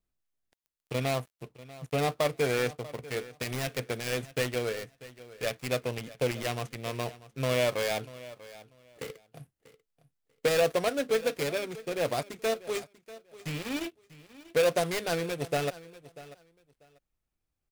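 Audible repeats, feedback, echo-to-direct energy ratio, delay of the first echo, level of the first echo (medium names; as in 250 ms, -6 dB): 2, 19%, -18.0 dB, 641 ms, -18.0 dB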